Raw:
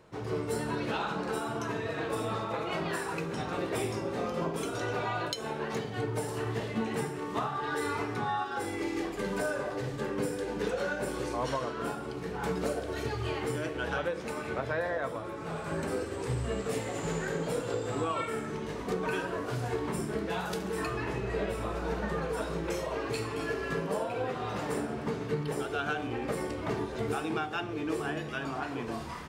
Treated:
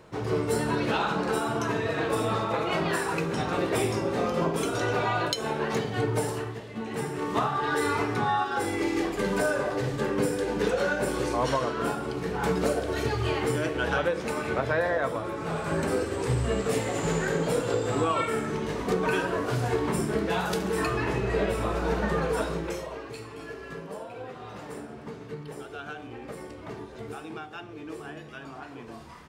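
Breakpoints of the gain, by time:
6.28 s +6 dB
6.63 s -7 dB
7.22 s +6 dB
22.39 s +6 dB
23.1 s -6.5 dB

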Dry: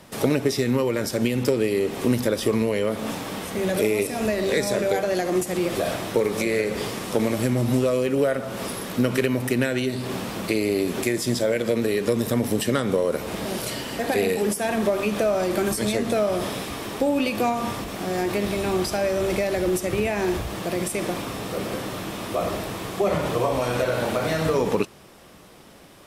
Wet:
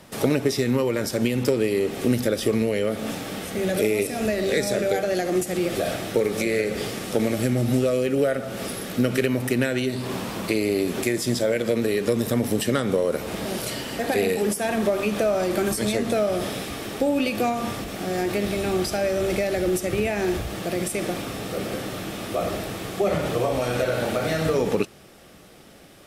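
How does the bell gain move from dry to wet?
bell 1000 Hz 0.21 oct
-2.5 dB
from 1.92 s -14 dB
from 9.26 s -4.5 dB
from 9.96 s +2 dB
from 10.55 s -4.5 dB
from 16.16 s -11 dB

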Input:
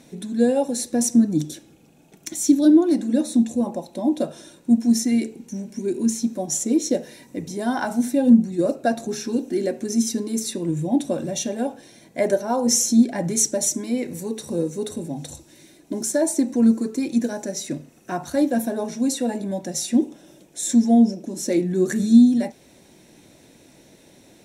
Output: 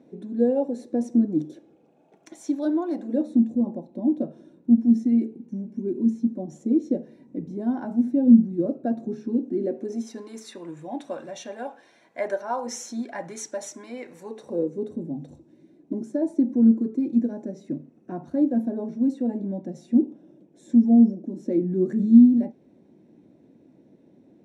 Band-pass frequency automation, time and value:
band-pass, Q 1.2
1.27 s 370 Hz
2.81 s 990 Hz
3.48 s 240 Hz
9.58 s 240 Hz
10.25 s 1200 Hz
14.17 s 1200 Hz
14.89 s 250 Hz

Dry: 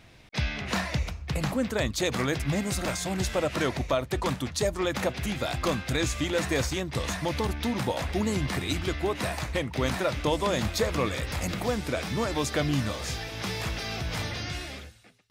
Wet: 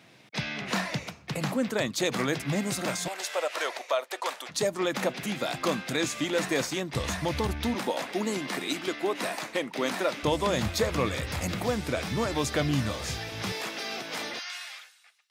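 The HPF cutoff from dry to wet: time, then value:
HPF 24 dB/oct
140 Hz
from 3.08 s 510 Hz
from 4.49 s 160 Hz
from 6.94 s 59 Hz
from 7.75 s 220 Hz
from 10.23 s 67 Hz
from 13.52 s 240 Hz
from 14.39 s 930 Hz

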